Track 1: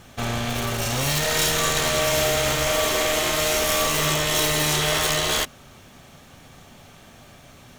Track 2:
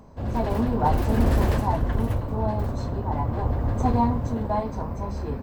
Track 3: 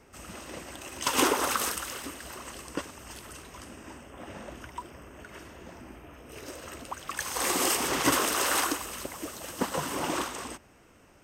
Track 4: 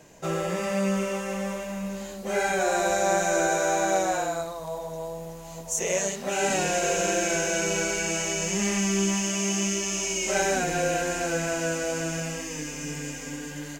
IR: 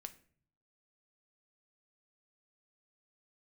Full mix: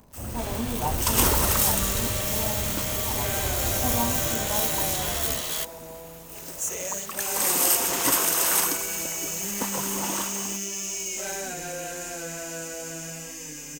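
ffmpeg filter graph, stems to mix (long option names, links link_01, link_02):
-filter_complex "[0:a]adelay=200,volume=-13dB[link_01];[1:a]volume=-6.5dB[link_02];[2:a]acrusher=bits=7:mix=0:aa=0.5,equalizer=frequency=910:width=7.3:gain=6,volume=-3dB[link_03];[3:a]asoftclip=type=tanh:threshold=-21dB,adelay=900,volume=-7.5dB[link_04];[link_01][link_02][link_03][link_04]amix=inputs=4:normalize=0,aemphasis=mode=production:type=50fm"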